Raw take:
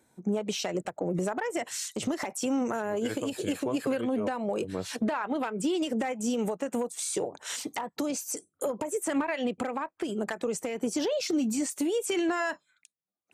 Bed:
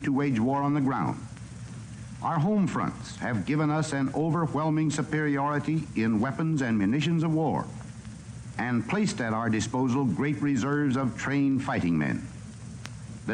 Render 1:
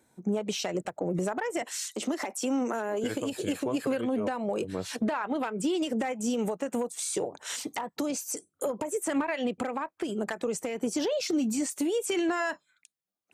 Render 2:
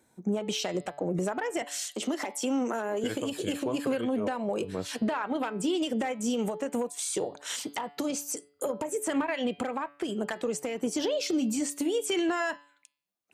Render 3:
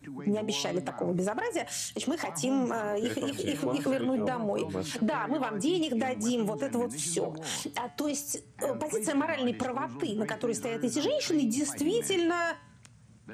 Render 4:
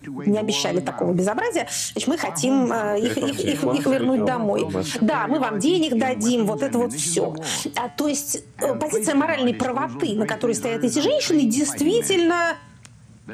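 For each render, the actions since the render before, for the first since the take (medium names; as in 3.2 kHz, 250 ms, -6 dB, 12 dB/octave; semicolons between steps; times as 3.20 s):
1.62–3.04 s: steep high-pass 210 Hz
dynamic bell 3.2 kHz, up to +5 dB, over -56 dBFS, Q 6.4; de-hum 143.8 Hz, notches 35
add bed -16 dB
trim +9 dB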